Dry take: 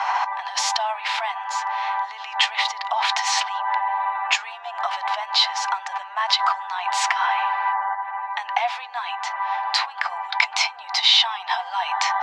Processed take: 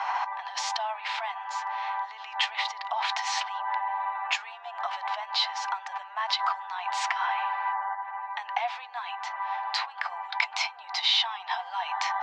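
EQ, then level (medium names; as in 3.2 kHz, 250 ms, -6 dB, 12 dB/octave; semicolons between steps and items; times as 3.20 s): distance through air 59 m; -6.5 dB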